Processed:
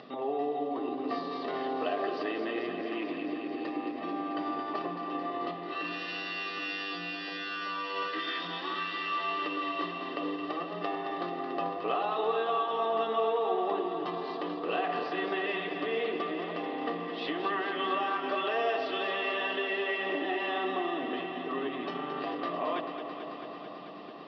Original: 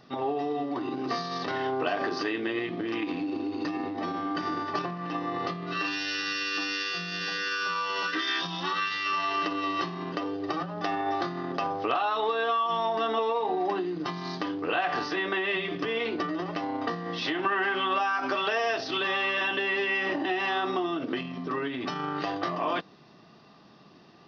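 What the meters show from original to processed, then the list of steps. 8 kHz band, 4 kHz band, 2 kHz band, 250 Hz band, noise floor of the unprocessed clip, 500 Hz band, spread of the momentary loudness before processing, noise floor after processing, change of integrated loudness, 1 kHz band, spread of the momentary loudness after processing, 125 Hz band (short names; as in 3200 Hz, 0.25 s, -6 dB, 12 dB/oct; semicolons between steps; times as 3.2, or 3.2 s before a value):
n/a, -5.5 dB, -5.5 dB, -3.5 dB, -54 dBFS, -1.0 dB, 6 LU, -40 dBFS, -3.5 dB, -3.0 dB, 6 LU, -9.5 dB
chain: high shelf 2300 Hz -7.5 dB; upward compressor, threshold -35 dBFS; speaker cabinet 310–4000 Hz, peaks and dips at 340 Hz -4 dB, 880 Hz -7 dB, 1500 Hz -9 dB, 2200 Hz -3 dB; echo with dull and thin repeats by turns 0.11 s, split 970 Hz, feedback 90%, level -7 dB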